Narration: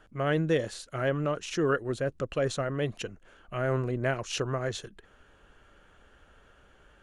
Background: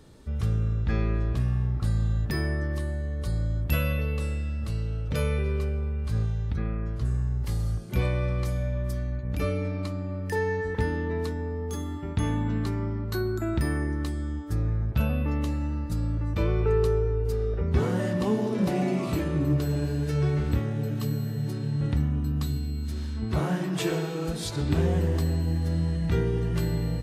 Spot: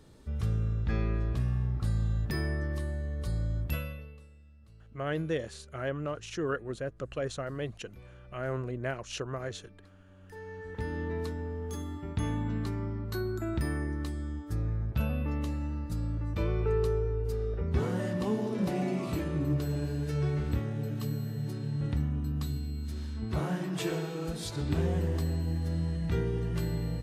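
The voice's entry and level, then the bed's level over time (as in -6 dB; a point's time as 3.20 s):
4.80 s, -5.5 dB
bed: 3.62 s -4 dB
4.29 s -26 dB
10.04 s -26 dB
11.01 s -5 dB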